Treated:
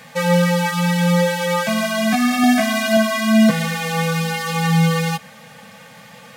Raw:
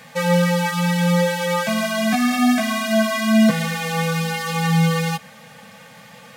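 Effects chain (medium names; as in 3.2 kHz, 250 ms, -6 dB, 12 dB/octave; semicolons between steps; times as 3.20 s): 2.42–2.97 s: doubling 15 ms -3 dB; trim +1.5 dB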